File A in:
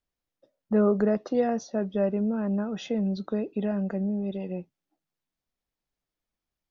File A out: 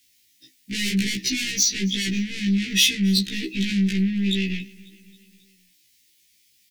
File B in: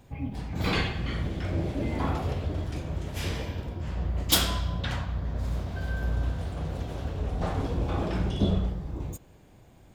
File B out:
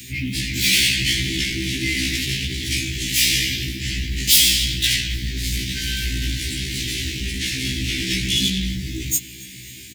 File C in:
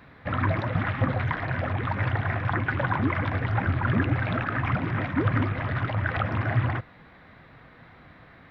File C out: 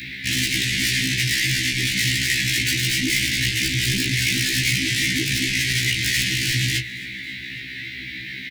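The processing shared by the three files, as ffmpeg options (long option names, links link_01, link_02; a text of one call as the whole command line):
ffmpeg -i in.wav -filter_complex "[0:a]equalizer=frequency=85:width=0.79:gain=9,asplit=2[link_01][link_02];[link_02]highpass=frequency=720:poles=1,volume=37dB,asoftclip=type=tanh:threshold=-6dB[link_03];[link_01][link_03]amix=inputs=2:normalize=0,lowpass=frequency=2900:poles=1,volume=-6dB,asuperstop=centerf=830:order=12:qfactor=0.53,crystalizer=i=9:c=0,asplit=2[link_04][link_05];[link_05]aecho=0:1:272|544|816|1088:0.0708|0.0418|0.0246|0.0145[link_06];[link_04][link_06]amix=inputs=2:normalize=0,afftfilt=real='re*1.73*eq(mod(b,3),0)':imag='im*1.73*eq(mod(b,3),0)':win_size=2048:overlap=0.75,volume=-8.5dB" out.wav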